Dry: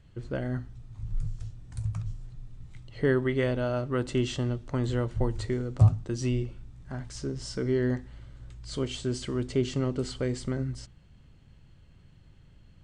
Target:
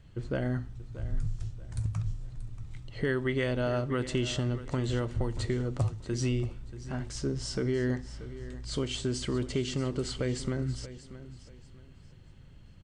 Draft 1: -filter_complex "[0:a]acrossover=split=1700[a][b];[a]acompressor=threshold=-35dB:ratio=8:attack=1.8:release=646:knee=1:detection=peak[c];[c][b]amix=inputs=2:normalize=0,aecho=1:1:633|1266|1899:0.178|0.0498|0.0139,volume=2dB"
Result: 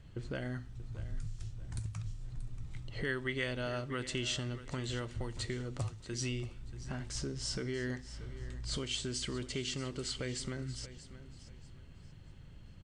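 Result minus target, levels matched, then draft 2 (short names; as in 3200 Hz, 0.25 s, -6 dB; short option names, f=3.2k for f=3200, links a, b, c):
compressor: peak gain reduction +8.5 dB
-filter_complex "[0:a]acrossover=split=1700[a][b];[a]acompressor=threshold=-25dB:ratio=8:attack=1.8:release=646:knee=1:detection=peak[c];[c][b]amix=inputs=2:normalize=0,aecho=1:1:633|1266|1899:0.178|0.0498|0.0139,volume=2dB"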